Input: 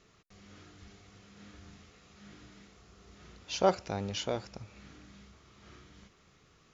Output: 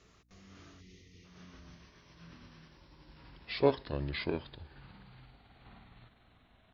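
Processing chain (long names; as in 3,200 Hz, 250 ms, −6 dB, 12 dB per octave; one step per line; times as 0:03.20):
pitch glide at a constant tempo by −10 semitones starting unshifted
gain on a spectral selection 0:00.81–0:01.25, 520–1,800 Hz −20 dB
mains hum 60 Hz, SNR 31 dB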